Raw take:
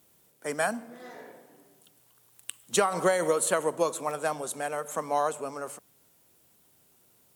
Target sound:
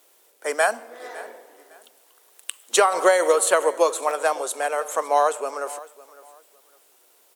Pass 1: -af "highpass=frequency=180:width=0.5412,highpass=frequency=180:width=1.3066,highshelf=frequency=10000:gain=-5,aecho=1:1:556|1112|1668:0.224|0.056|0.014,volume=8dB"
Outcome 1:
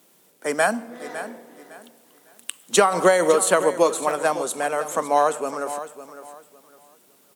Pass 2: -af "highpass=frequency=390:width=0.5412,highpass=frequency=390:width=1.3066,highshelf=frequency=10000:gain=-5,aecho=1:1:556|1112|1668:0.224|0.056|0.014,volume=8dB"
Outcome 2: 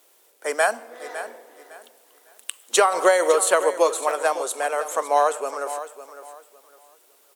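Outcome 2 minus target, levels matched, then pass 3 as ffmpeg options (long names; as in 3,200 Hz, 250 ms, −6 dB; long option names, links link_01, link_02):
echo-to-direct +6.5 dB
-af "highpass=frequency=390:width=0.5412,highpass=frequency=390:width=1.3066,highshelf=frequency=10000:gain=-5,aecho=1:1:556|1112:0.106|0.0265,volume=8dB"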